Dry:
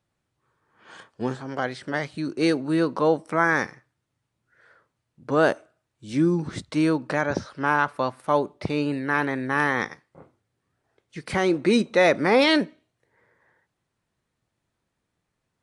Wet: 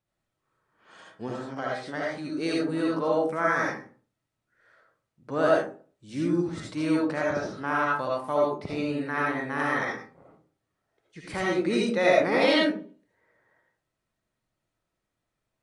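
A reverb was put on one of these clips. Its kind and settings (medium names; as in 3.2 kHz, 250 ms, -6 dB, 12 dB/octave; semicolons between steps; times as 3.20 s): algorithmic reverb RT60 0.42 s, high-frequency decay 0.45×, pre-delay 35 ms, DRR -4 dB; trim -8.5 dB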